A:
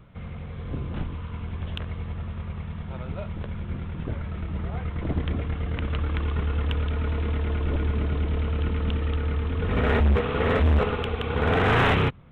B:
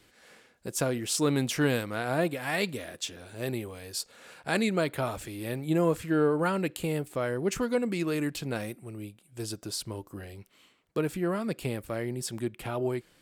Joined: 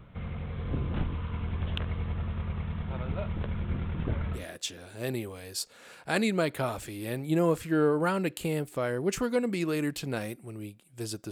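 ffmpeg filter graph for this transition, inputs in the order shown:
-filter_complex "[0:a]apad=whole_dur=11.31,atrim=end=11.31,atrim=end=4.45,asetpts=PTS-STARTPTS[s0];[1:a]atrim=start=2.7:end=9.7,asetpts=PTS-STARTPTS[s1];[s0][s1]acrossfade=d=0.14:c1=tri:c2=tri"

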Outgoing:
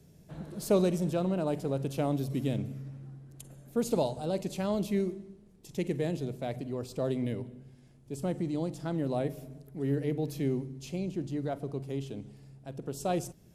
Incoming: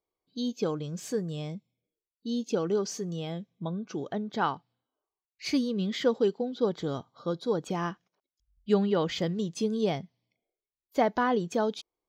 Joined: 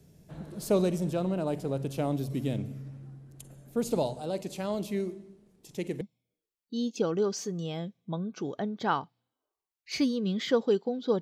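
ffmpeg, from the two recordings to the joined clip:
-filter_complex "[0:a]asettb=1/sr,asplit=3[s0][s1][s2];[s0]atrim=end=4.174[s3];[s1]atrim=start=4.17:end=6.01,asetpts=PTS-STARTPTS,afade=t=in:d=0.004:c=qsin,afade=t=out:st=1.836:d=0.004:c=qsin,lowshelf=f=130:g=-10.5[s4];[s2]atrim=start=6.006[s5];[s3][s4]acrossfade=d=0.004:c1=hsin:c2=qsin[s6];[s6][s5]acrossfade=d=0.004:c1=qsin:c2=hsin,apad=whole_dur=11.21,atrim=end=11.21,atrim=end=6.012[s7];[1:a]atrim=start=1.538:end=6.74[s8];[s7][s8]acrossfade=d=0.004:c1=hsin:c2=hsin"

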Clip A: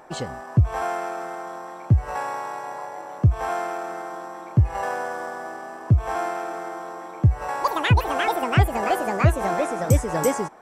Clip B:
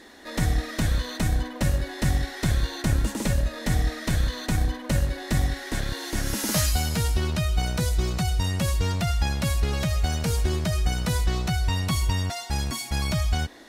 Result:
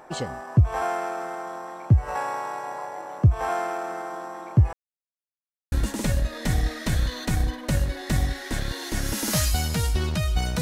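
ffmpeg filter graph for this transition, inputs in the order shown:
-filter_complex "[0:a]apad=whole_dur=10.61,atrim=end=10.61,asplit=2[s0][s1];[s0]atrim=end=4.73,asetpts=PTS-STARTPTS,afade=t=out:st=4.726:d=0.004:c=hsin[s2];[s1]atrim=start=4.73:end=5.72,asetpts=PTS-STARTPTS,volume=0[s3];[1:a]atrim=start=2.93:end=7.82,asetpts=PTS-STARTPTS,afade=t=in:d=0.004:c=hsin[s4];[s2][s3][s4]concat=n=3:v=0:a=1"

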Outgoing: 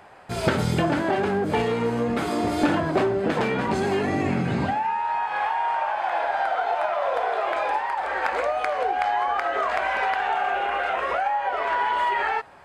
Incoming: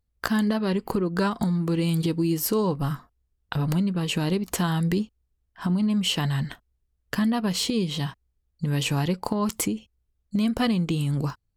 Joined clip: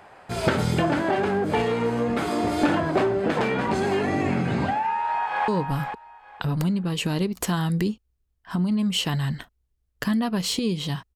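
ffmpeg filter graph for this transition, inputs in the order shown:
-filter_complex "[0:a]apad=whole_dur=11.15,atrim=end=11.15,atrim=end=5.482[s0];[1:a]atrim=start=2.588:end=8.26[s1];[s0][s1]acrossfade=d=0.004:c1=hsin:c2=hsin,asplit=2[s2][s3];[s3]afade=t=in:st=4.9:d=0.01,afade=t=out:st=5.48:d=0.01,aecho=0:1:460|920|1380:0.421697|0.0843393|0.0168679[s4];[s2][s4]amix=inputs=2:normalize=0"

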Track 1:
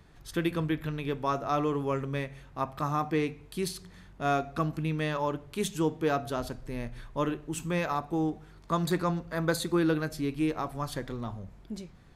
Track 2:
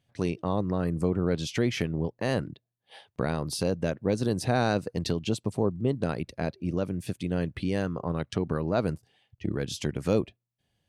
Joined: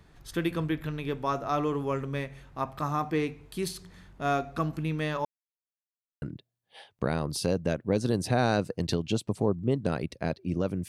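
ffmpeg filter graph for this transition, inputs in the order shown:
-filter_complex "[0:a]apad=whole_dur=10.88,atrim=end=10.88,asplit=2[s0][s1];[s0]atrim=end=5.25,asetpts=PTS-STARTPTS,afade=t=out:st=5.246:d=0.004:c=hsin[s2];[s1]atrim=start=5.25:end=6.22,asetpts=PTS-STARTPTS,volume=0[s3];[1:a]atrim=start=2.39:end=7.05,asetpts=PTS-STARTPTS,afade=t=in:d=0.004:c=hsin[s4];[s2][s3][s4]concat=n=3:v=0:a=1"

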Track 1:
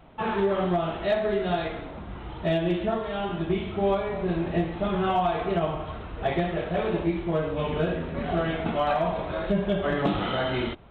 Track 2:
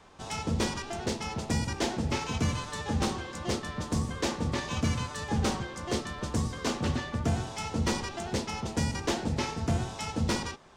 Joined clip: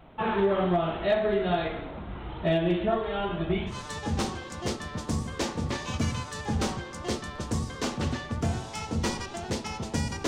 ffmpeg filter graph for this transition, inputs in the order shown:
-filter_complex "[0:a]asplit=3[s0][s1][s2];[s0]afade=t=out:st=2.89:d=0.02[s3];[s1]aphaser=in_gain=1:out_gain=1:delay=4.7:decay=0.36:speed=0.24:type=triangular,afade=t=in:st=2.89:d=0.02,afade=t=out:st=3.8:d=0.02[s4];[s2]afade=t=in:st=3.8:d=0.02[s5];[s3][s4][s5]amix=inputs=3:normalize=0,apad=whole_dur=10.27,atrim=end=10.27,atrim=end=3.8,asetpts=PTS-STARTPTS[s6];[1:a]atrim=start=2.49:end=9.1,asetpts=PTS-STARTPTS[s7];[s6][s7]acrossfade=d=0.14:c1=tri:c2=tri"

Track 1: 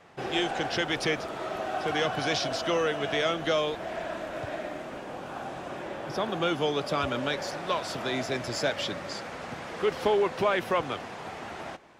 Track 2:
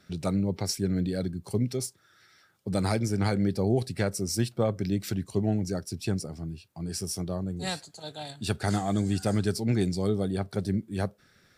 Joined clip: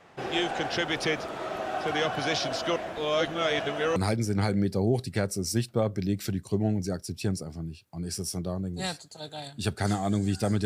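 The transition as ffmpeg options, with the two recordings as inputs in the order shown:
-filter_complex "[0:a]apad=whole_dur=10.65,atrim=end=10.65,asplit=2[s0][s1];[s0]atrim=end=2.762[s2];[s1]atrim=start=2.758:end=3.962,asetpts=PTS-STARTPTS,areverse[s3];[1:a]atrim=start=2.788:end=9.48[s4];[s2][s3]acrossfade=d=0.004:c1=hsin:c2=hsin[s5];[s5][s4]acrossfade=d=0.004:c1=hsin:c2=hsin"

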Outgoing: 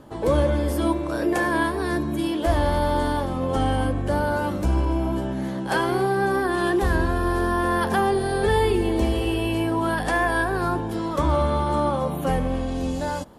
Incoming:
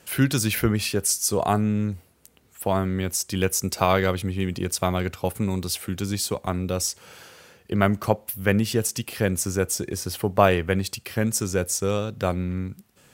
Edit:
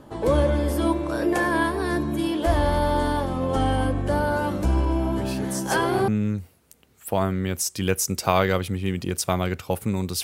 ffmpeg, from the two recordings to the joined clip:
-filter_complex "[1:a]asplit=2[s0][s1];[0:a]apad=whole_dur=10.23,atrim=end=10.23,atrim=end=6.082[s2];[s1]atrim=start=1.618:end=5.77[s3];[s0]atrim=start=0.71:end=1.62,asetpts=PTS-STARTPTS,volume=0.299,afade=t=in:d=0.004:c=hsin,afade=t=out:st=0.906:d=0.004:c=hsin,adelay=227997S[s4];[s2][s3]acrossfade=d=0.004:c1=hsin:c2=hsin[s5];[s5][s4]amix=inputs=2:normalize=0"

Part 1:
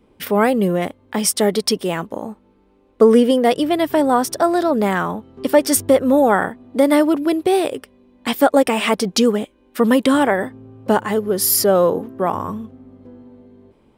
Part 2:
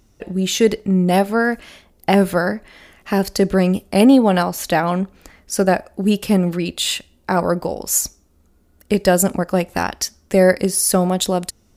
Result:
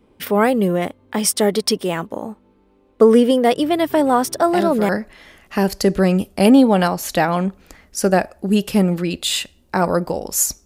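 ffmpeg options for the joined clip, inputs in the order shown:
-filter_complex "[1:a]asplit=2[s0][s1];[0:a]apad=whole_dur=10.65,atrim=end=10.65,atrim=end=4.892[s2];[s1]atrim=start=2.438:end=8.2[s3];[s0]atrim=start=1.61:end=2.44,asetpts=PTS-STARTPTS,volume=0.335,afade=t=in:d=0.004:c=hsin,afade=t=out:st=0.826:d=0.004:c=hsin,adelay=4060[s4];[s2][s3]acrossfade=d=0.004:c1=hsin:c2=hsin[s5];[s5][s4]amix=inputs=2:normalize=0"

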